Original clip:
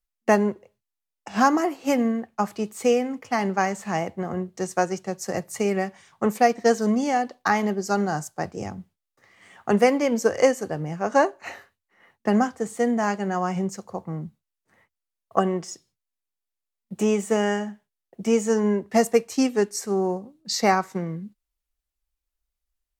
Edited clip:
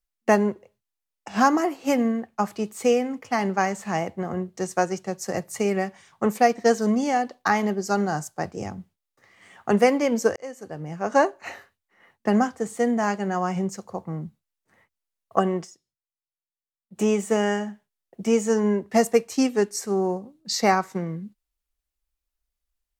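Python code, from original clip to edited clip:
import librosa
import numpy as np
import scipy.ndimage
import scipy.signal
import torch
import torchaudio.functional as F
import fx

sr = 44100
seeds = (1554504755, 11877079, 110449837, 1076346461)

y = fx.edit(x, sr, fx.fade_in_span(start_s=10.36, length_s=0.79),
    fx.fade_down_up(start_s=15.64, length_s=1.35, db=-14.5, fade_s=0.31, curve='exp'), tone=tone)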